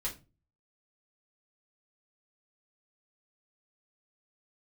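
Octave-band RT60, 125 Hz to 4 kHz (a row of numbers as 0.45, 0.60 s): 0.55, 0.45, 0.35, 0.25, 0.25, 0.20 s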